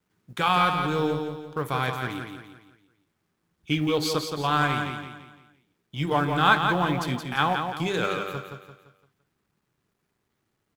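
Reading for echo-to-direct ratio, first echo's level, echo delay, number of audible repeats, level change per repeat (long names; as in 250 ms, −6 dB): −5.0 dB, −6.0 dB, 171 ms, 4, −7.5 dB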